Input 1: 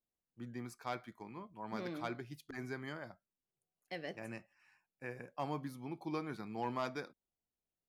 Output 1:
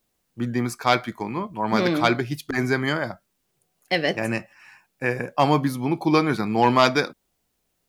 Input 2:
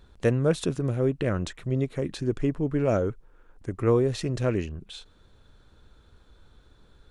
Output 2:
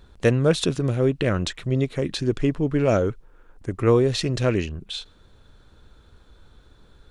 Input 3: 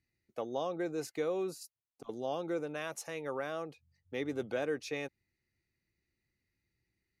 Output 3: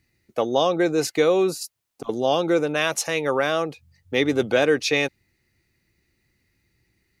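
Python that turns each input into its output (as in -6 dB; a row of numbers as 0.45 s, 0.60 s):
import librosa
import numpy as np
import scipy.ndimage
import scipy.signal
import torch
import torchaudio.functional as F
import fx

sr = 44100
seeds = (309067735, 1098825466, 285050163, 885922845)

y = fx.dynamic_eq(x, sr, hz=3800.0, q=0.78, threshold_db=-52.0, ratio=4.0, max_db=7)
y = y * 10.0 ** (-24 / 20.0) / np.sqrt(np.mean(np.square(y)))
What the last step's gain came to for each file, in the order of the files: +20.5 dB, +4.0 dB, +15.0 dB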